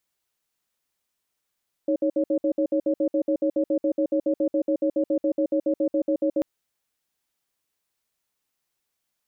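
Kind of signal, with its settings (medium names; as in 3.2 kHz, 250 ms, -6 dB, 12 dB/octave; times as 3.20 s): cadence 312 Hz, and 556 Hz, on 0.08 s, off 0.06 s, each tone -22 dBFS 4.54 s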